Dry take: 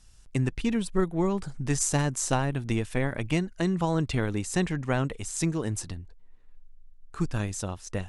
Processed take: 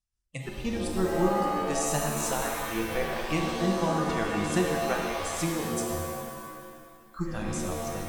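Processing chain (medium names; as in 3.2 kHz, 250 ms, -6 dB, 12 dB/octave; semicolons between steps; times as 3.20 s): spectral noise reduction 28 dB; tremolo 5.7 Hz, depth 56%; pitch-shifted reverb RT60 1.9 s, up +7 st, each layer -2 dB, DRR 1 dB; trim -1.5 dB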